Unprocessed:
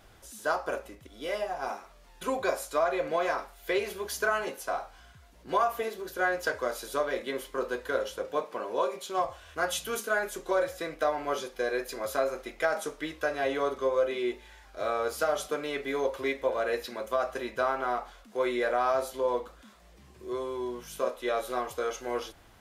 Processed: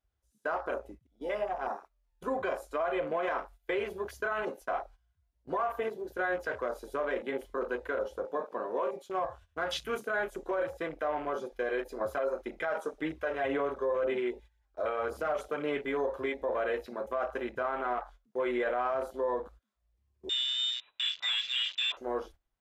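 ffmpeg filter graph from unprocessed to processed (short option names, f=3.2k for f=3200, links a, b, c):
-filter_complex "[0:a]asettb=1/sr,asplit=3[a][b][c];[a]atrim=end=12.014[d];[b]atrim=start=12.01:end=15.85,asetpts=PTS-STARTPTS,afade=t=in:d=0.004:c=qsin,afade=t=out:st=3.836:d=0.004:c=qsin,highpass=59,aphaser=in_gain=1:out_gain=1:delay=2.2:decay=0.4:speed=1.9:type=sinusoidal[e];[c]atrim=start=15.846[f];[d][e]acrossfade=d=0.004:c1=hsin:c2=qsin[g];[g][f]acrossfade=d=0.004:c1=qsin:c2=hsin,asettb=1/sr,asplit=3[h][i][j];[h]atrim=end=20.294[k];[i]atrim=start=20.29:end=21.97,asetpts=PTS-STARTPTS,afade=t=in:d=0.004:c=qsin,afade=t=out:st=1.676:d=0.004:c=qsin,equalizer=f=1.3k:w=0.49:g=6.5,asoftclip=type=hard:threshold=-25dB,lowpass=f=3.4k:t=q:w=0.5098,lowpass=f=3.4k:t=q:w=0.6013,lowpass=f=3.4k:t=q:w=0.9,lowpass=f=3.4k:t=q:w=2.563,afreqshift=-4000[l];[j]atrim=start=21.966[m];[k][l]acrossfade=d=0.004:c1=hsin:c2=qsin[n];[n][m]acrossfade=d=0.004:c1=qsin:c2=hsin,afwtdn=0.0112,agate=range=-16dB:threshold=-49dB:ratio=16:detection=peak,alimiter=limit=-23dB:level=0:latency=1:release=25"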